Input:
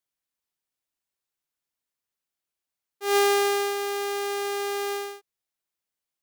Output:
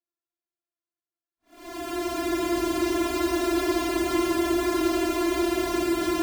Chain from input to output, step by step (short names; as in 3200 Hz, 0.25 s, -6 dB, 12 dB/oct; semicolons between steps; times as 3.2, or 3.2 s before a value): sample sorter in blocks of 128 samples; sample leveller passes 3; Paulstretch 11×, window 0.05 s, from 2.86; gain -7.5 dB